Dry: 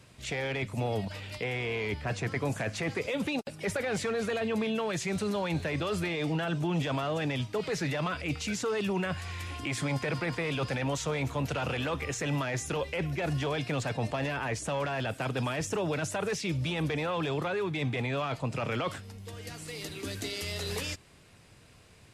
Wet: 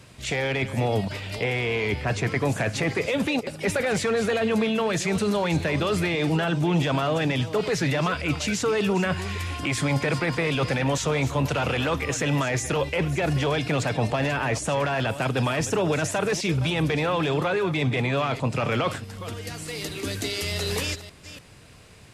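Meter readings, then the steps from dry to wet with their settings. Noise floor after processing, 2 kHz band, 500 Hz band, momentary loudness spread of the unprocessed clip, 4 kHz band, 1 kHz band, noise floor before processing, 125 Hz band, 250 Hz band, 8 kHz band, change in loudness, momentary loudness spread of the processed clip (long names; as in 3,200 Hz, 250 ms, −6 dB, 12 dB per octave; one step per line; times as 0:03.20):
−43 dBFS, +7.0 dB, +7.0 dB, 5 LU, +7.0 dB, +7.0 dB, −56 dBFS, +7.0 dB, +7.0 dB, +7.0 dB, +7.0 dB, 5 LU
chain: delay that plays each chunk backwards 293 ms, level −13 dB
level +7 dB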